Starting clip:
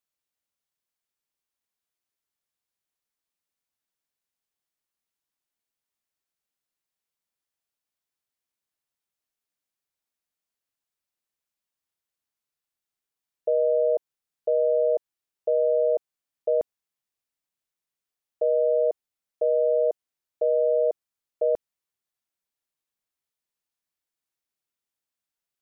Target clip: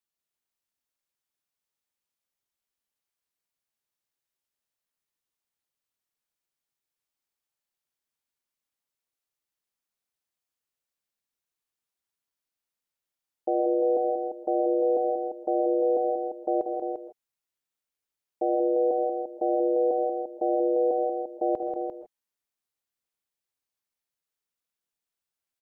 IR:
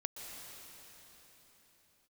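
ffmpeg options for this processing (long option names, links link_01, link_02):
-filter_complex "[0:a]aeval=exprs='val(0)*sin(2*PI*130*n/s)':channel_layout=same,aecho=1:1:74|186|262|347:0.237|0.473|0.15|0.422[link_01];[1:a]atrim=start_sample=2205,afade=type=out:start_time=0.21:duration=0.01,atrim=end_sample=9702[link_02];[link_01][link_02]afir=irnorm=-1:irlink=0,volume=3dB"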